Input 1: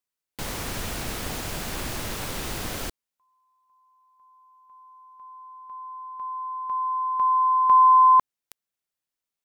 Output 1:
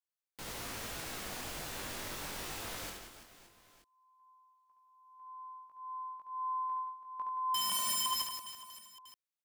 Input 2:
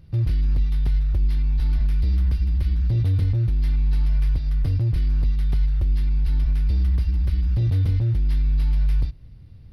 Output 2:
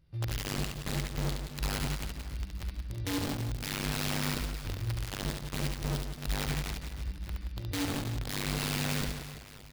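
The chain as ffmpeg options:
-filter_complex "[0:a]lowshelf=f=320:g=-7.5,flanger=delay=18:depth=2.9:speed=0.21,aeval=exprs='(mod(15*val(0)+1,2)-1)/15':c=same,asplit=2[a][b];[b]aecho=0:1:70|175|332.5|568.8|923.1:0.631|0.398|0.251|0.158|0.1[c];[a][c]amix=inputs=2:normalize=0,volume=-7.5dB"

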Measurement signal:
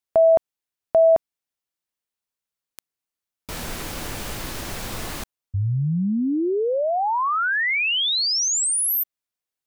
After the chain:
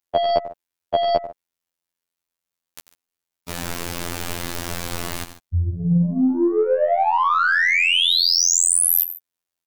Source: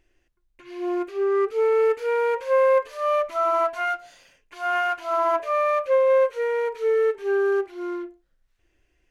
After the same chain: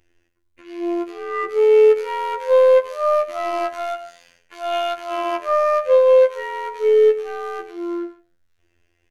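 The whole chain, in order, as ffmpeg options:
-af "aecho=1:1:92|142:0.266|0.158,aeval=exprs='0.376*(cos(1*acos(clip(val(0)/0.376,-1,1)))-cos(1*PI/2))+0.00299*(cos(4*acos(clip(val(0)/0.376,-1,1)))-cos(4*PI/2))+0.00376*(cos(6*acos(clip(val(0)/0.376,-1,1)))-cos(6*PI/2))+0.015*(cos(7*acos(clip(val(0)/0.376,-1,1)))-cos(7*PI/2))+0.00335*(cos(8*acos(clip(val(0)/0.376,-1,1)))-cos(8*PI/2))':c=same,afftfilt=real='hypot(re,im)*cos(PI*b)':imag='0':win_size=2048:overlap=0.75,volume=8dB"

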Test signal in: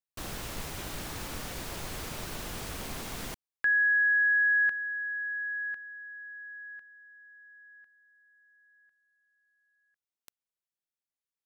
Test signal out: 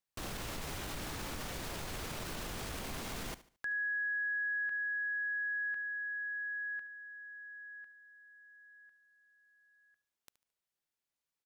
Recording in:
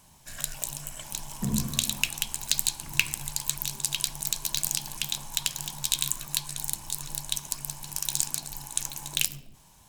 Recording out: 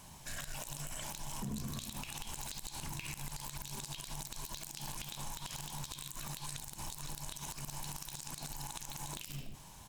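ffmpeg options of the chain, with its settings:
-af "highshelf=f=7.5k:g=-4,acompressor=threshold=-39dB:ratio=10:attack=0.38:release=42:knee=1:detection=rms,aecho=1:1:73|146|219:0.141|0.048|0.0163,volume=4dB"

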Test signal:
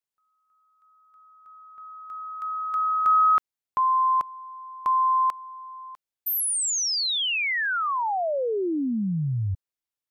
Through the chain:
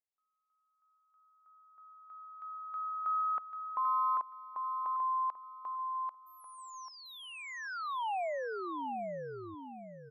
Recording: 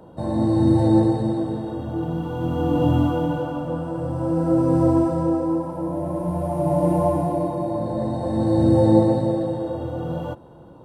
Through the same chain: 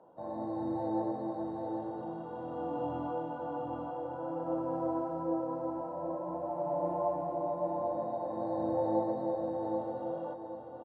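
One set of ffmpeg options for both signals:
-filter_complex "[0:a]bandpass=f=780:t=q:w=1.3:csg=0,asplit=2[a][b];[b]aecho=0:1:791|1582|2373|3164:0.631|0.177|0.0495|0.0139[c];[a][c]amix=inputs=2:normalize=0,volume=-8.5dB"

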